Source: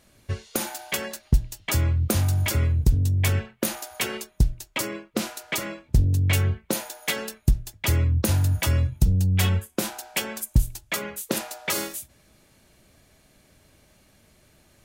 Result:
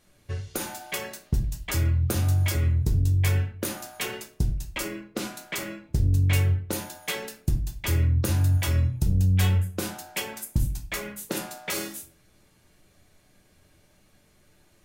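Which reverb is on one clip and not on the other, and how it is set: simulated room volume 31 m³, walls mixed, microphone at 0.4 m; trim -5.5 dB

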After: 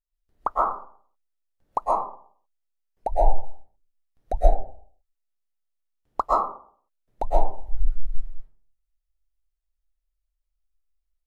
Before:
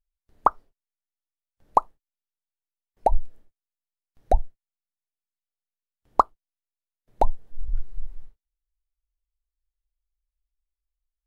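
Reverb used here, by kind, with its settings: algorithmic reverb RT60 0.53 s, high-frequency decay 0.5×, pre-delay 90 ms, DRR -7.5 dB; trim -8 dB

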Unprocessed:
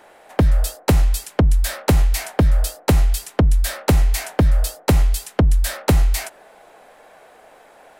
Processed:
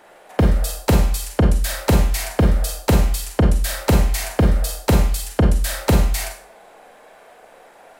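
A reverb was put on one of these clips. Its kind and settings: Schroeder reverb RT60 0.41 s, combs from 32 ms, DRR 2 dB; trim -1 dB

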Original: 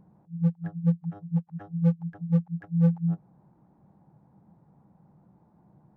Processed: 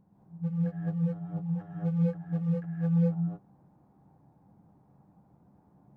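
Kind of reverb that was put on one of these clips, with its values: gated-style reverb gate 240 ms rising, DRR -5.5 dB; trim -7.5 dB

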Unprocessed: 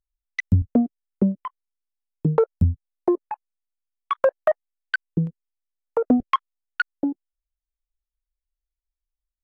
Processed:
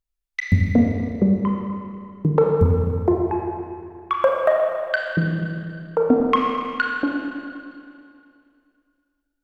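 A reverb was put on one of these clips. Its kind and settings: Schroeder reverb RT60 2.4 s, combs from 27 ms, DRR -1 dB; trim +1 dB

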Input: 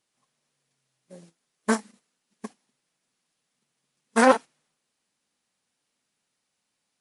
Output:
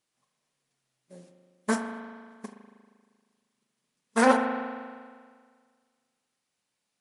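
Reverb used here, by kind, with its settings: spring tank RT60 1.8 s, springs 39 ms, chirp 80 ms, DRR 5 dB; trim -3.5 dB

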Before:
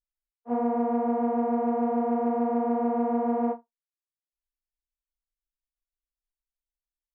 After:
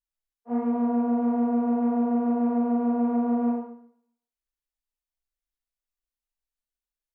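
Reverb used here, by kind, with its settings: Schroeder reverb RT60 0.66 s, combs from 26 ms, DRR -0.5 dB; trim -3.5 dB

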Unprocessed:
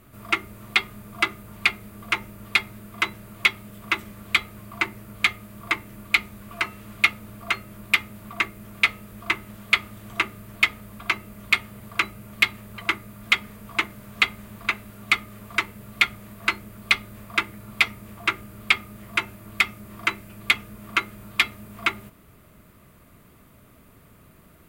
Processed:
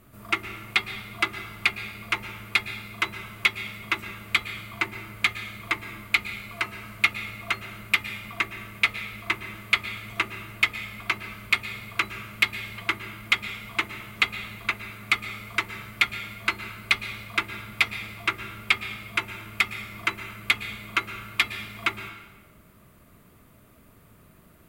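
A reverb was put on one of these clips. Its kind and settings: plate-style reverb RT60 1.2 s, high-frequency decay 0.85×, pre-delay 100 ms, DRR 10 dB; trim -2.5 dB

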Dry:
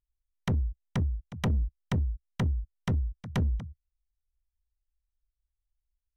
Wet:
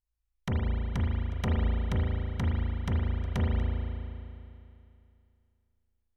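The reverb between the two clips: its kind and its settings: spring tank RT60 2.6 s, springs 36 ms, chirp 65 ms, DRR -3.5 dB; trim -3.5 dB

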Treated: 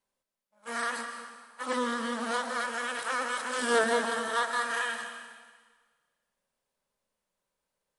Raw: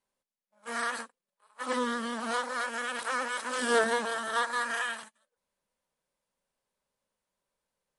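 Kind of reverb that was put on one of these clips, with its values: algorithmic reverb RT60 1.5 s, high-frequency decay 1×, pre-delay 105 ms, DRR 7 dB

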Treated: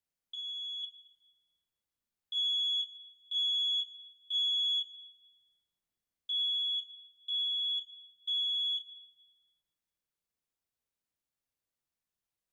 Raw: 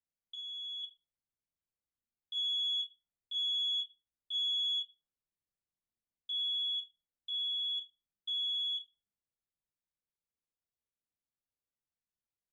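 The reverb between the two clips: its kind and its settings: plate-style reverb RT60 1.9 s, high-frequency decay 0.6×, pre-delay 100 ms, DRR 16.5 dB; trim +3 dB

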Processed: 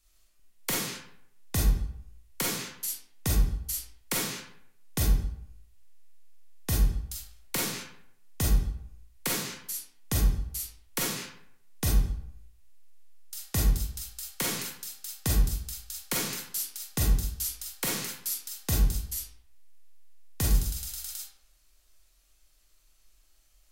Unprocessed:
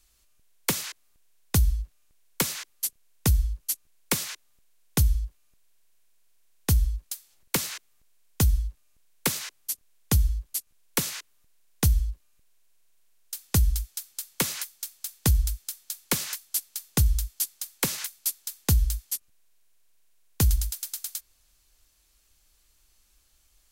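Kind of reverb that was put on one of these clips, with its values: algorithmic reverb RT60 0.7 s, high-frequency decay 0.65×, pre-delay 0 ms, DRR -5 dB; trim -7 dB

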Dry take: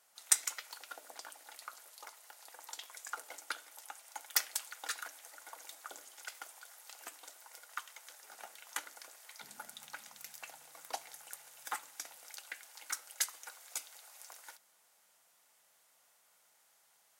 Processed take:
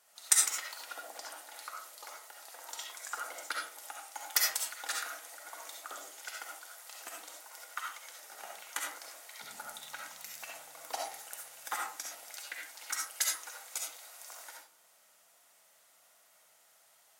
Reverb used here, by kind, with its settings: algorithmic reverb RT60 0.44 s, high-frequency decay 0.4×, pre-delay 25 ms, DRR -1.5 dB; trim +1.5 dB

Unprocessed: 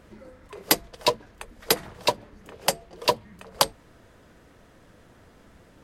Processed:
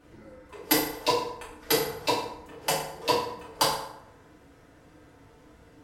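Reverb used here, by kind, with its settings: FDN reverb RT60 0.81 s, low-frequency decay 0.8×, high-frequency decay 0.65×, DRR -8.5 dB; trim -10 dB

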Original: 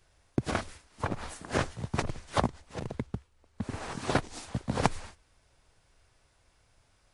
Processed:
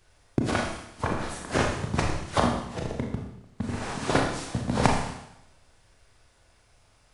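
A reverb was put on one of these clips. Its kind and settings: Schroeder reverb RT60 0.82 s, combs from 26 ms, DRR 0.5 dB; trim +3 dB

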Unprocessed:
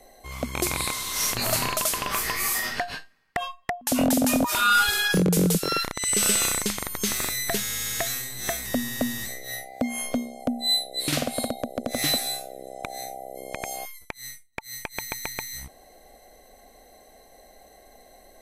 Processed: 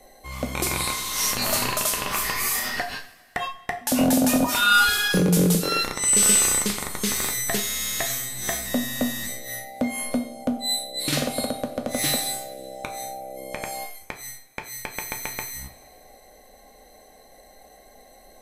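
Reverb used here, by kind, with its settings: two-slope reverb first 0.39 s, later 1.9 s, from -18 dB, DRR 3 dB

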